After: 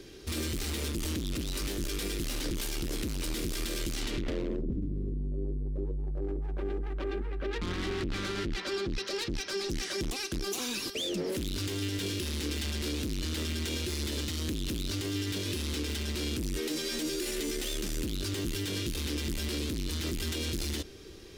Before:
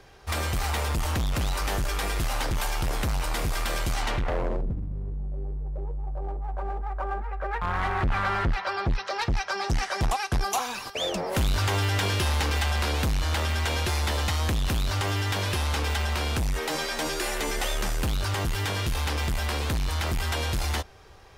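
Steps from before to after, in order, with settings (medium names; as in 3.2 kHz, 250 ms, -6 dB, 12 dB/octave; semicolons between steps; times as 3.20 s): saturation -28.5 dBFS, distortion -13 dB; FFT filter 120 Hz 0 dB, 330 Hz +14 dB, 780 Hz -13 dB, 3.6 kHz +6 dB; peak limiter -25 dBFS, peak gain reduction 10.5 dB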